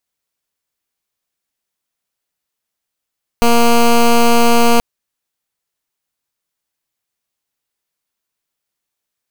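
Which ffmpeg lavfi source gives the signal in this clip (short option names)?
-f lavfi -i "aevalsrc='0.355*(2*lt(mod(235*t,1),0.13)-1)':d=1.38:s=44100"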